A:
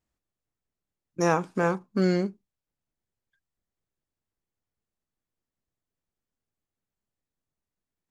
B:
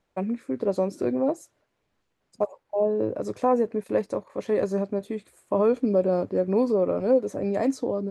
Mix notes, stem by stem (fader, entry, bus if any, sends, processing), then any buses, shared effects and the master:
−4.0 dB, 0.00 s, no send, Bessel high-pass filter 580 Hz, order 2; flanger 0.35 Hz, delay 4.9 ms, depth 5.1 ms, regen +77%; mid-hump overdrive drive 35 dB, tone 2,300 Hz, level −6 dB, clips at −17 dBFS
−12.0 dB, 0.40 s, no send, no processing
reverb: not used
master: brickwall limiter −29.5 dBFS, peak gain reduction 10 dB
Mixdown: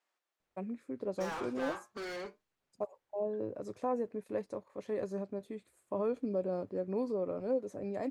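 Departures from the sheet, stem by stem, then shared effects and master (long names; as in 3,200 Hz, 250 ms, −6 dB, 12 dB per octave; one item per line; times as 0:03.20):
stem A −4.0 dB → −15.5 dB
master: missing brickwall limiter −29.5 dBFS, peak gain reduction 10 dB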